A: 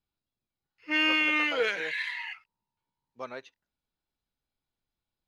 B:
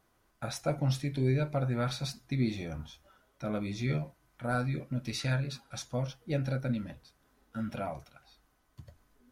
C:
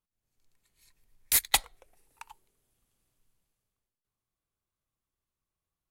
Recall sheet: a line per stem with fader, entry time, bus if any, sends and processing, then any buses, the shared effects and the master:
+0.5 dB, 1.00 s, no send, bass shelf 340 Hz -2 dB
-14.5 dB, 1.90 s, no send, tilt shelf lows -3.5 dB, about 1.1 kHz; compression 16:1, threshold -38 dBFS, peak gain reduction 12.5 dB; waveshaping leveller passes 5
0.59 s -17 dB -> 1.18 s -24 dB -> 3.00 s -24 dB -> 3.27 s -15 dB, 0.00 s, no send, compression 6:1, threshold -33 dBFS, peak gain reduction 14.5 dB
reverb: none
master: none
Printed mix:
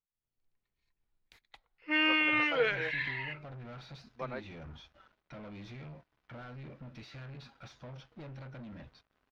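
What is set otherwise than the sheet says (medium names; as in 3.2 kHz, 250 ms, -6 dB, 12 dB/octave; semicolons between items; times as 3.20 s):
stem C -17.0 dB -> -8.5 dB; master: extra distance through air 250 m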